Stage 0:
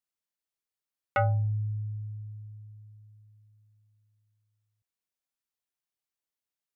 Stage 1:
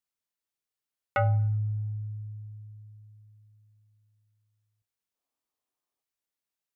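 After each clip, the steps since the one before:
gain on a spectral selection 0:05.15–0:06.02, 230–1,300 Hz +8 dB
coupled-rooms reverb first 0.64 s, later 2.6 s, from −26 dB, DRR 17 dB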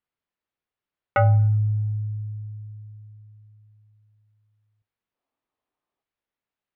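high-frequency loss of the air 340 metres
level +7.5 dB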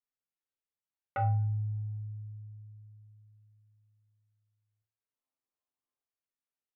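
treble cut that deepens with the level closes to 2,200 Hz
resonators tuned to a chord F2 major, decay 0.34 s

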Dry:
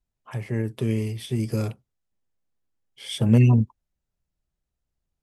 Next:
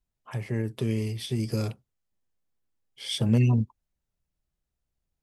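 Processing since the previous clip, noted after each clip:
dynamic equaliser 4,700 Hz, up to +7 dB, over −54 dBFS, Q 1.7
in parallel at +0.5 dB: downward compressor, threshold −24 dBFS, peak gain reduction 12 dB
on the sum: level −7.5 dB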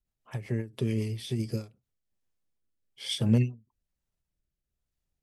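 rotating-speaker cabinet horn 7.5 Hz, later 1.1 Hz, at 0:01.26
every ending faded ahead of time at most 200 dB per second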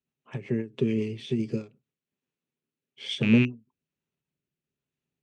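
loose part that buzzes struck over −24 dBFS, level −21 dBFS
loudspeaker in its box 150–6,400 Hz, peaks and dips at 150 Hz +10 dB, 250 Hz +8 dB, 400 Hz +8 dB, 710 Hz −3 dB, 2,600 Hz +6 dB, 5,000 Hz −10 dB

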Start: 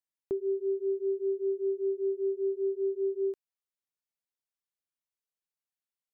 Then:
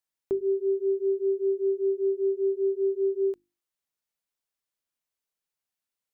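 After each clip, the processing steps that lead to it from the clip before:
mains-hum notches 50/100/150/200/250/300/350 Hz
level +4.5 dB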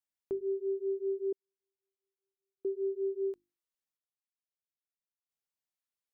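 gate pattern "xxxxxx......" 68 BPM −60 dB
level −7.5 dB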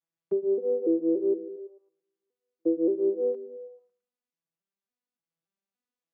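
vocoder with an arpeggio as carrier minor triad, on E3, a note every 287 ms
echo through a band-pass that steps 110 ms, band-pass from 170 Hz, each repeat 0.7 octaves, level −10 dB
level +8 dB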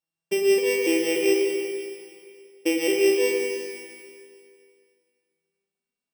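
samples sorted by size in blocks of 16 samples
four-comb reverb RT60 2.2 s, DRR 0 dB
level +1.5 dB

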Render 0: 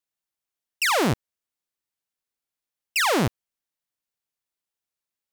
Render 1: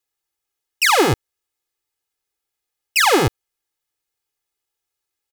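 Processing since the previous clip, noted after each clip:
comb filter 2.4 ms, depth 95%
level +4 dB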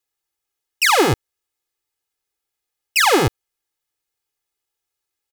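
no processing that can be heard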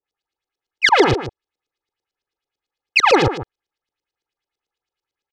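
auto-filter low-pass saw up 9 Hz 390–5,800 Hz
single-tap delay 152 ms −11.5 dB
level −1 dB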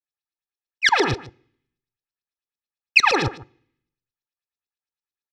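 convolution reverb RT60 0.65 s, pre-delay 3 ms, DRR 15.5 dB
expander for the loud parts 1.5 to 1, over −33 dBFS
level −1 dB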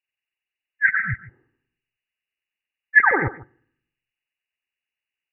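hearing-aid frequency compression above 1,500 Hz 4 to 1
healed spectral selection 0:00.85–0:01.31, 230–1,300 Hz both
level −1 dB

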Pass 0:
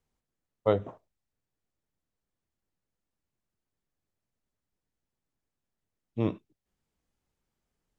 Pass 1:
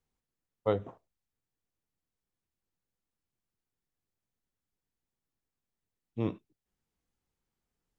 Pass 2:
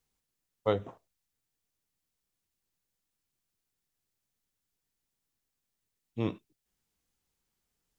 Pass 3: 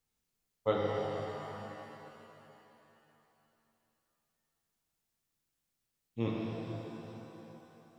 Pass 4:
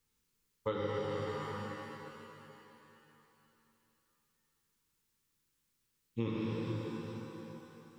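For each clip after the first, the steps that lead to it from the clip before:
notch filter 610 Hz, Q 12; level −3.5 dB
high-shelf EQ 2,200 Hz +8.5 dB
reverb with rising layers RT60 3.2 s, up +7 semitones, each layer −8 dB, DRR −3 dB; level −4.5 dB
downward compressor 4 to 1, threshold −36 dBFS, peak gain reduction 10.5 dB; Butterworth band-reject 680 Hz, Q 2.3; level +4.5 dB

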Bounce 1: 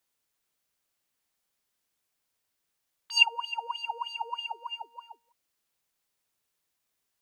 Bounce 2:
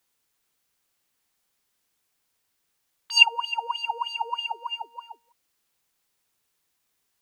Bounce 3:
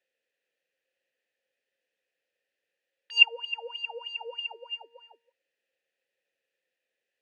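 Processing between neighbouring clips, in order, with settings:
notch filter 610 Hz, Q 12; level +5.5 dB
formant filter e; level +9 dB

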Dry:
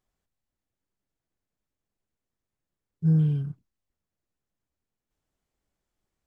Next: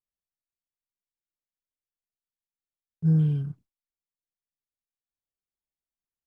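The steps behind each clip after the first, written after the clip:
noise gate with hold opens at −50 dBFS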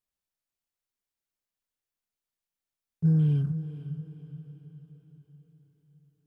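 downward compressor, threshold −23 dBFS, peak gain reduction 6 dB
feedback delay with all-pass diffusion 488 ms, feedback 50%, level −12 dB
level +3.5 dB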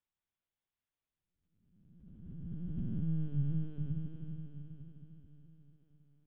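spectrum smeared in time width 1,220 ms
mains-hum notches 50/100/150 Hz
linear-prediction vocoder at 8 kHz pitch kept

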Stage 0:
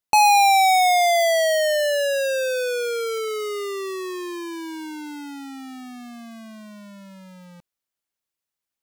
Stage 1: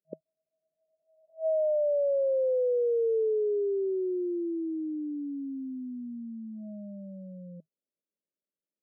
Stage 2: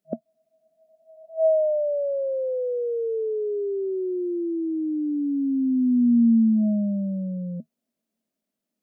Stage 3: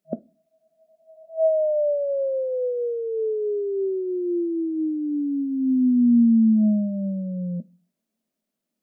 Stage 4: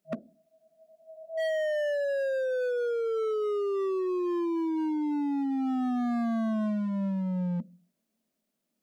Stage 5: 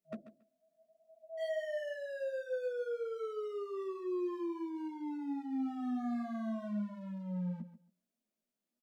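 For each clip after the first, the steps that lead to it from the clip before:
brick-wall band-pass 160–640 Hz; brickwall limiter −24 dBFS, peak gain reduction 7 dB; level +1 dB
downward compressor 2 to 1, threshold −41 dBFS, peak gain reduction 8.5 dB; hollow resonant body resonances 230/670 Hz, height 17 dB, ringing for 75 ms; level +8 dB
convolution reverb RT60 0.30 s, pre-delay 5 ms, DRR 16 dB; level +1 dB
in parallel at +1.5 dB: downward compressor 10 to 1, threshold −28 dBFS, peak gain reduction 14 dB; on the sum: hard clipping −22 dBFS, distortion −8 dB; level −5.5 dB
multi-voice chorus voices 2, 0.59 Hz, delay 12 ms, depth 4.5 ms; repeating echo 139 ms, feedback 17%, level −13 dB; level −6.5 dB

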